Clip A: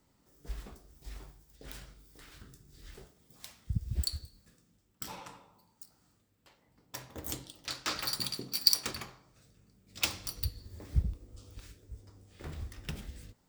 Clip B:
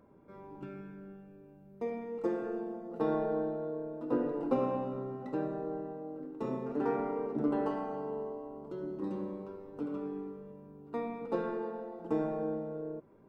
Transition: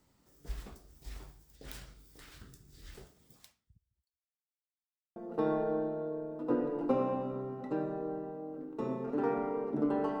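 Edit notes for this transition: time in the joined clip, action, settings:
clip A
0:03.32–0:04.57: fade out exponential
0:04.57–0:05.16: silence
0:05.16: continue with clip B from 0:02.78

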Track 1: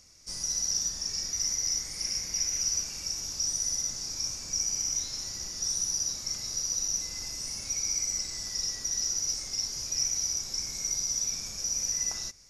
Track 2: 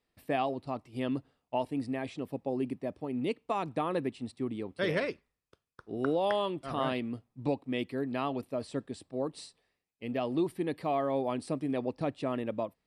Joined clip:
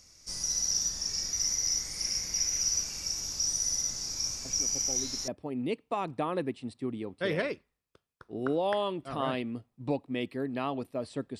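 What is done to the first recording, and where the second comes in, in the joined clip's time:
track 1
0:04.45: mix in track 2 from 0:02.03 0.83 s −9 dB
0:05.28: continue with track 2 from 0:02.86

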